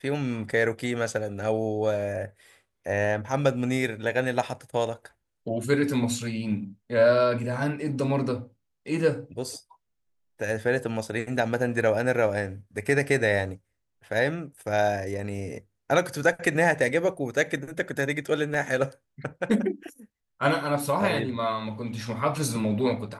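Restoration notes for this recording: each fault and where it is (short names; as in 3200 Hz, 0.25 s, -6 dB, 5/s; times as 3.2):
18.54 gap 2.9 ms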